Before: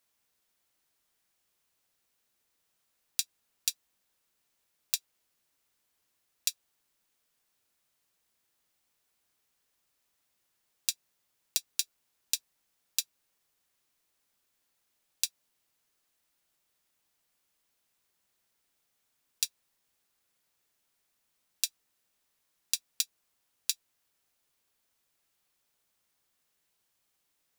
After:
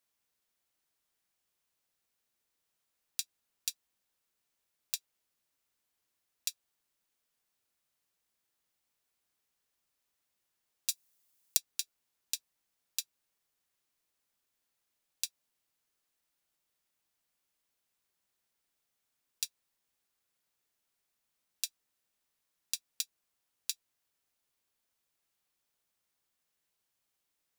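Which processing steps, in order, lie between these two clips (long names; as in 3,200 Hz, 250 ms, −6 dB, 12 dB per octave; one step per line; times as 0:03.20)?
0:10.89–0:11.57: high-shelf EQ 5,200 Hz +11 dB
level −5.5 dB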